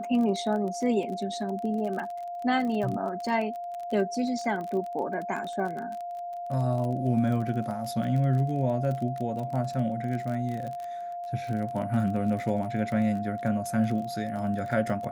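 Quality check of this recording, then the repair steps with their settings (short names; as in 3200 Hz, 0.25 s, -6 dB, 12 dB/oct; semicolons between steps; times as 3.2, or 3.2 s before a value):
crackle 28/s -33 dBFS
tone 700 Hz -33 dBFS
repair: de-click; notch 700 Hz, Q 30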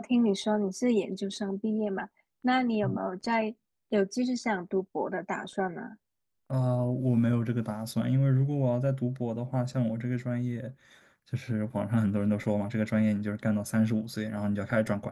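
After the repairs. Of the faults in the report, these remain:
none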